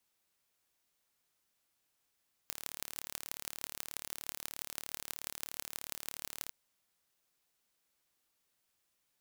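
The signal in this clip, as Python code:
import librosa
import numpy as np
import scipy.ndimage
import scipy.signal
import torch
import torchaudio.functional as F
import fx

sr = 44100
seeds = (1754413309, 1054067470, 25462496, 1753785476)

y = fx.impulse_train(sr, length_s=4.02, per_s=36.8, accent_every=6, level_db=-10.0)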